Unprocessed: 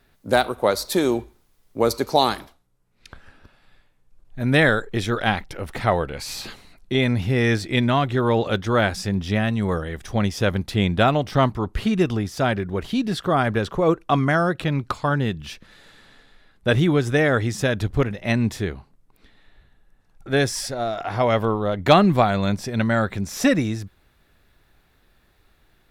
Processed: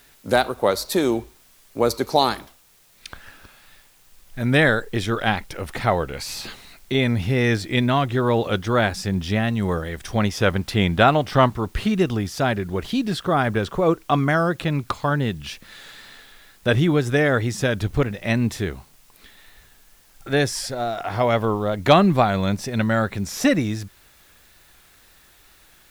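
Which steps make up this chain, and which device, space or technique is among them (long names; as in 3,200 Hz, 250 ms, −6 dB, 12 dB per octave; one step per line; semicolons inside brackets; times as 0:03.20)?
noise-reduction cassette on a plain deck (one half of a high-frequency compander encoder only; tape wow and flutter; white noise bed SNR 34 dB)
0:10.18–0:11.57: parametric band 1,300 Hz +4 dB 2.6 octaves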